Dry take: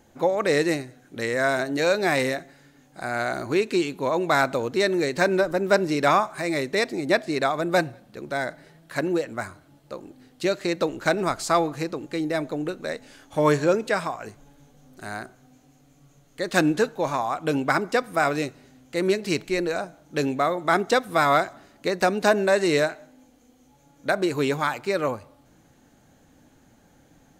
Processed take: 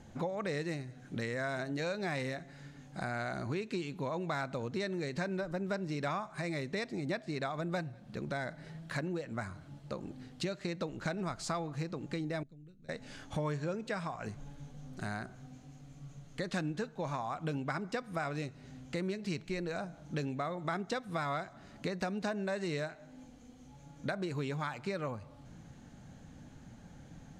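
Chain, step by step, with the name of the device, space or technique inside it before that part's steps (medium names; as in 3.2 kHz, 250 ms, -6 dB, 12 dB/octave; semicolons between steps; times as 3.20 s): jukebox (low-pass 7.5 kHz 12 dB/octave; resonant low shelf 240 Hz +6.5 dB, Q 1.5; compression 4:1, threshold -36 dBFS, peak gain reduction 18.5 dB); 12.43–12.89 s: amplifier tone stack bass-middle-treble 10-0-1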